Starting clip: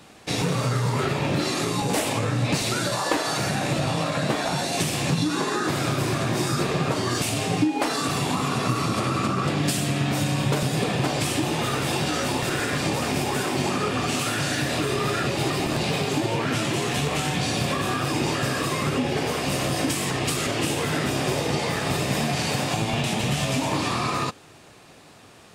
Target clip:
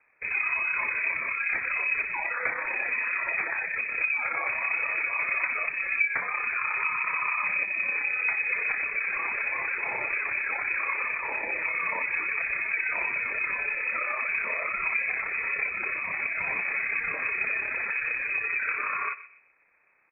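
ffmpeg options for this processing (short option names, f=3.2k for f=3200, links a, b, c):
-filter_complex "[0:a]afftdn=nr=12:nf=-31,asetrate=56007,aresample=44100,tremolo=f=33:d=0.4,highpass=f=100:w=0.5412,highpass=f=100:w=1.3066,asplit=2[a][b];[b]adelay=126,lowpass=f=880:p=1,volume=-13dB,asplit=2[c][d];[d]adelay=126,lowpass=f=880:p=1,volume=0.38,asplit=2[e][f];[f]adelay=126,lowpass=f=880:p=1,volume=0.38,asplit=2[g][h];[h]adelay=126,lowpass=f=880:p=1,volume=0.38[i];[c][e][g][i]amix=inputs=4:normalize=0[j];[a][j]amix=inputs=2:normalize=0,lowpass=f=2.3k:t=q:w=0.5098,lowpass=f=2.3k:t=q:w=0.6013,lowpass=f=2.3k:t=q:w=0.9,lowpass=f=2.3k:t=q:w=2.563,afreqshift=-2700,volume=-2dB"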